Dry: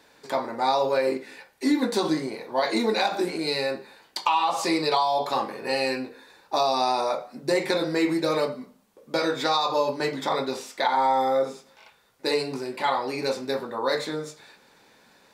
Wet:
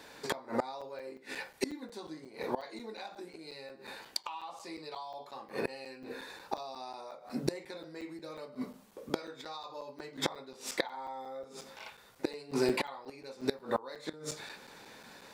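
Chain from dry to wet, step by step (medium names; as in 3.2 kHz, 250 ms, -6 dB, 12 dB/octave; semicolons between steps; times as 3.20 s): inverted gate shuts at -21 dBFS, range -25 dB; crackling interface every 0.18 s, samples 256, zero, from 0.81 s; trim +4.5 dB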